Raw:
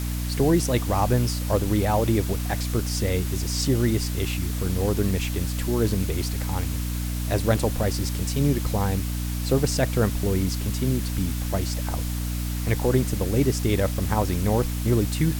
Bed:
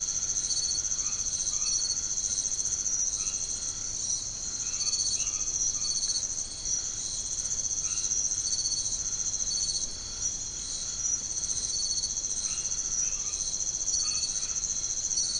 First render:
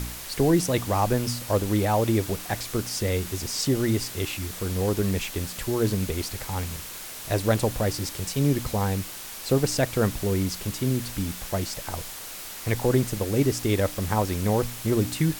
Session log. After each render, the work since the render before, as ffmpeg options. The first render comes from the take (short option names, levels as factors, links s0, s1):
-af "bandreject=f=60:t=h:w=4,bandreject=f=120:t=h:w=4,bandreject=f=180:t=h:w=4,bandreject=f=240:t=h:w=4,bandreject=f=300:t=h:w=4"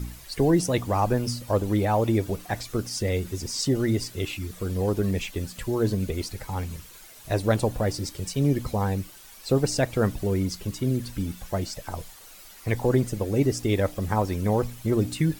-af "afftdn=nr=12:nf=-38"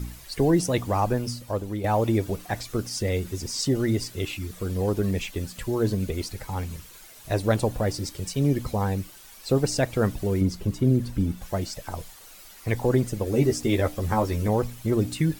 -filter_complex "[0:a]asettb=1/sr,asplit=3[s0][s1][s2];[s0]atrim=end=10.414[s3];[s1]atrim=start=10.41:end=11.42,asetpts=PTS-STARTPTS,afade=t=in:d=0.004:c=qsin,afade=t=out:st=1.006:d=0.004:c=qsin,tiltshelf=f=1100:g=5[s4];[s2]atrim=start=11.416[s5];[s3][s4]acrossfade=d=0.004:c1=hsin:c2=qsin[s6];[s6][s5]acrossfade=d=0.004:c1=qsin:c2=hsin,asettb=1/sr,asplit=3[s7][s8][s9];[s7]atrim=end=13.254[s10];[s8]atrim=start=13.25:end=14.48,asetpts=PTS-STARTPTS,afade=t=in:d=0.004:c=qsin,afade=t=out:st=1.226:d=0.004:c=qsin,asplit=2[s11][s12];[s12]adelay=13,volume=0.631[s13];[s11][s13]amix=inputs=2:normalize=0,atrim=end_sample=54243[s14];[s9]atrim=start=14.476[s15];[s10][s14]acrossfade=d=0.004:c1=hsin:c2=qsin[s16];[s16][s15]acrossfade=d=0.004:c1=qsin:c2=hsin,asplit=2[s17][s18];[s17]atrim=end=1.84,asetpts=PTS-STARTPTS,afade=t=out:st=0.96:d=0.88:silence=0.375837[s19];[s18]atrim=start=1.84,asetpts=PTS-STARTPTS,afade=t=in:d=0.004:c=hsin:silence=0.375837[s20];[s19][s20]concat=n=2:v=0:a=1"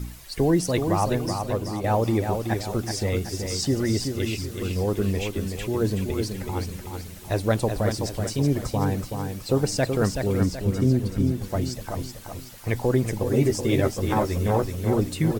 -af "aecho=1:1:377|754|1131|1508|1885:0.501|0.221|0.097|0.0427|0.0188"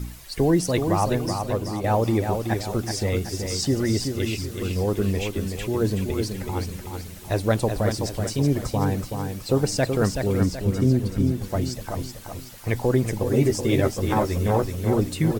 -af "volume=1.12"